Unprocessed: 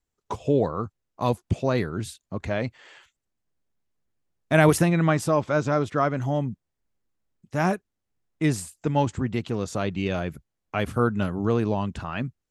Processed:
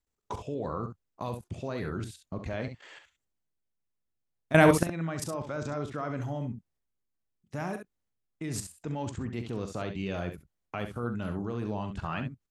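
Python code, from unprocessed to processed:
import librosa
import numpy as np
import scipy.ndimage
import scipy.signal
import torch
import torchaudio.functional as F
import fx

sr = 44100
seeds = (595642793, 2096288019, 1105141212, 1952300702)

y = fx.level_steps(x, sr, step_db=17)
y = fx.room_early_taps(y, sr, ms=(42, 67), db=(-13.0, -8.5))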